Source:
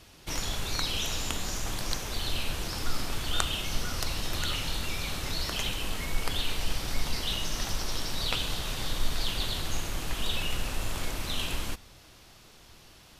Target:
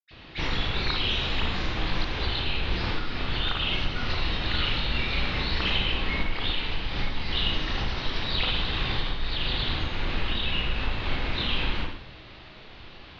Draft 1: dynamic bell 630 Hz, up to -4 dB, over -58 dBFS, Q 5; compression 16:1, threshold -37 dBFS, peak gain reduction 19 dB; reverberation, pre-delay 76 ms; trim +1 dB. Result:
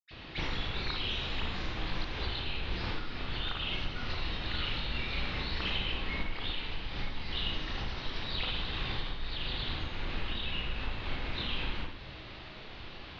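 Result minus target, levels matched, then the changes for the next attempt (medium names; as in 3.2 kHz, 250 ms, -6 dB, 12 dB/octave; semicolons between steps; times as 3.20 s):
compression: peak gain reduction +8 dB
change: compression 16:1, threshold -28.5 dBFS, peak gain reduction 11 dB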